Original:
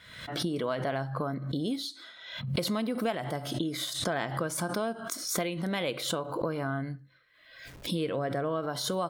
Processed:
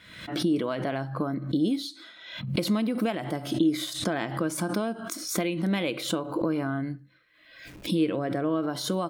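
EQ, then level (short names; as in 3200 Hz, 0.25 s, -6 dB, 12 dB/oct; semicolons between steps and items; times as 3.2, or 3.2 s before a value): thirty-one-band EQ 200 Hz +7 dB, 315 Hz +11 dB, 2500 Hz +5 dB; 0.0 dB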